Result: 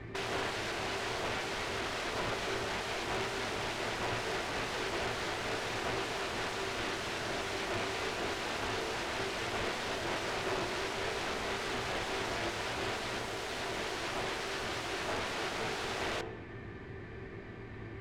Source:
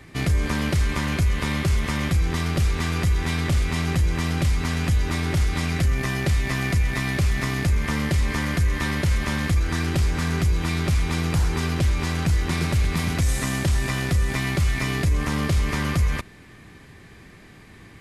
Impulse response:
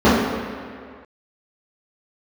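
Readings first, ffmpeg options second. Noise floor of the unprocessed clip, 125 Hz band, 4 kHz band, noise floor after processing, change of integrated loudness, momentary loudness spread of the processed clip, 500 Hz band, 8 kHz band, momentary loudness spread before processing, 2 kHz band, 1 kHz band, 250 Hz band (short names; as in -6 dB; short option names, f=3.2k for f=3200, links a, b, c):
-47 dBFS, -24.0 dB, -5.0 dB, -45 dBFS, -12.0 dB, 3 LU, -3.5 dB, -10.0 dB, 1 LU, -7.5 dB, -4.0 dB, -15.5 dB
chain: -filter_complex "[0:a]aeval=exprs='(mod(26.6*val(0)+1,2)-1)/26.6':c=same,adynamicsmooth=sensitivity=2:basefreq=3.1k,asplit=2[a][b];[1:a]atrim=start_sample=2205,asetrate=74970,aresample=44100[c];[b][c]afir=irnorm=-1:irlink=0,volume=-32.5dB[d];[a][d]amix=inputs=2:normalize=0"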